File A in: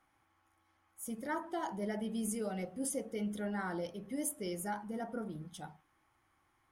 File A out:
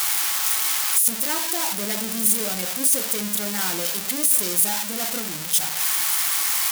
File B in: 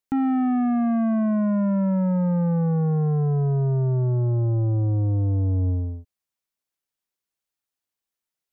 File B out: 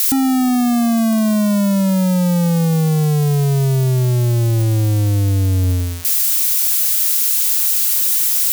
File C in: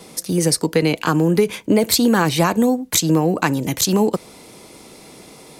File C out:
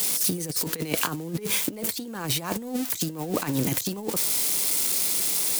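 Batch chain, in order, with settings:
spike at every zero crossing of −16.5 dBFS
compressor whose output falls as the input rises −21 dBFS, ratio −0.5
normalise the peak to −9 dBFS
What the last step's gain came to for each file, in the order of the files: +5.5, +6.5, −5.0 decibels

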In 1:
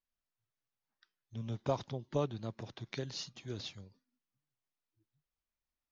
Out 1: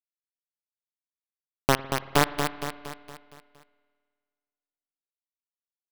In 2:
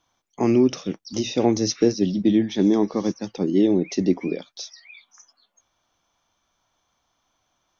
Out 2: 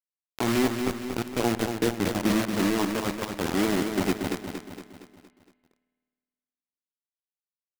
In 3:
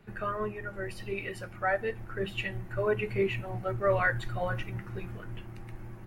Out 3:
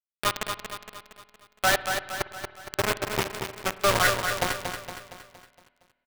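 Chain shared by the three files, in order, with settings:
samples sorted by size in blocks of 8 samples
dynamic equaliser 390 Hz, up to −6 dB, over −29 dBFS, Q 0.78
auto-filter low-pass saw up 8.6 Hz 950–2,600 Hz
bit reduction 4 bits
on a send: repeating echo 232 ms, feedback 50%, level −6.5 dB
on the sum: spring reverb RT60 1.8 s, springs 52 ms, chirp 35 ms, DRR 15 dB
loudness normalisation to −27 LKFS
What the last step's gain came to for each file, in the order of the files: +11.0, −3.0, +2.5 decibels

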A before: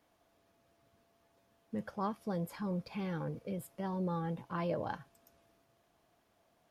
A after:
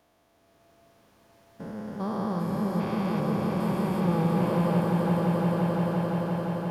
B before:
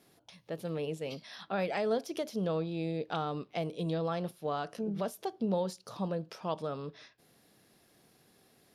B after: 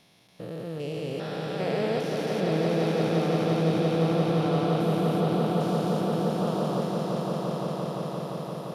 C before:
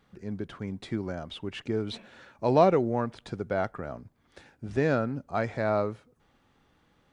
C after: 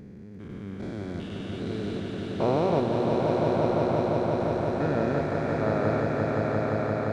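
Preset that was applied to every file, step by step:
spectrum averaged block by block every 400 ms
automatic gain control gain up to 3 dB
echo that builds up and dies away 173 ms, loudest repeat 5, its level −5 dB
loudness normalisation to −27 LKFS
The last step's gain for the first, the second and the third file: +7.5, +3.5, −1.5 decibels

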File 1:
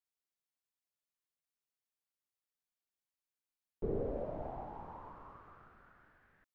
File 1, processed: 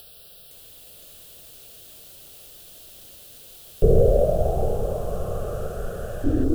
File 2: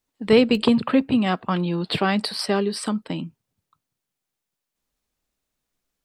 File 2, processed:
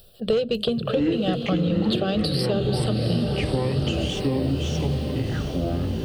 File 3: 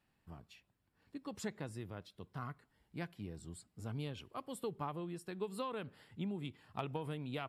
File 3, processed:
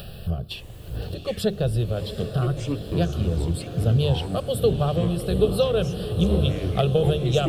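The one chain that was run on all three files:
upward compression, threshold −42 dBFS
phaser with its sweep stopped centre 1,400 Hz, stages 8
delay with pitch and tempo change per echo 512 ms, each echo −7 semitones, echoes 3, each echo −6 dB
flat-topped bell 1,400 Hz −10 dB
mains-hum notches 50/100/150/200/250/300/350/400 Hz
soft clipping −13.5 dBFS
feedback delay with all-pass diffusion 743 ms, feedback 65%, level −10 dB
downward compressor 5 to 1, threshold −31 dBFS
low-shelf EQ 400 Hz +6 dB
loudness normalisation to −24 LKFS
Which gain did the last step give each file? +20.0, +8.0, +21.0 decibels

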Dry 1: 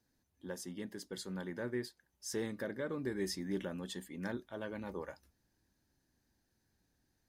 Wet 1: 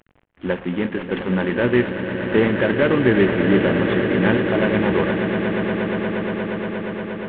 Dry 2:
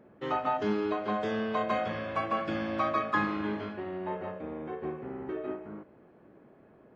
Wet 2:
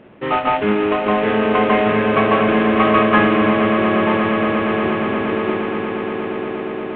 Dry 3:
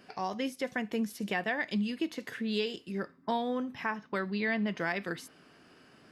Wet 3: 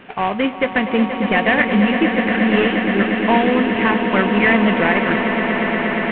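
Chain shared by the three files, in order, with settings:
variable-slope delta modulation 16 kbit/s
dynamic equaliser 2,400 Hz, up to +4 dB, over −48 dBFS, Q 1.9
on a send: echo that builds up and dies away 118 ms, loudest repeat 8, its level −11.5 dB
on the sum: normalise the peak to −2 dBFS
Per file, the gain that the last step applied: +21.5, +12.0, +15.0 decibels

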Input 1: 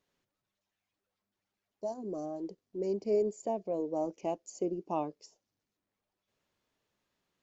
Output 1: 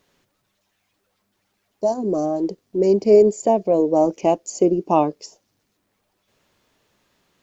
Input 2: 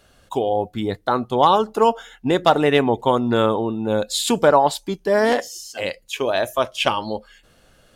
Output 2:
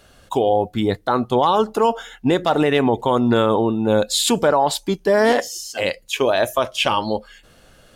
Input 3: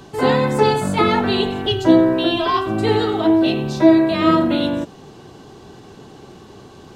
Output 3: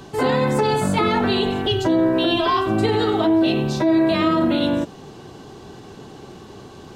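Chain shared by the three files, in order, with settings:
brickwall limiter −11.5 dBFS
loudness normalisation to −19 LKFS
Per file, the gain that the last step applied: +16.5, +4.5, +1.0 decibels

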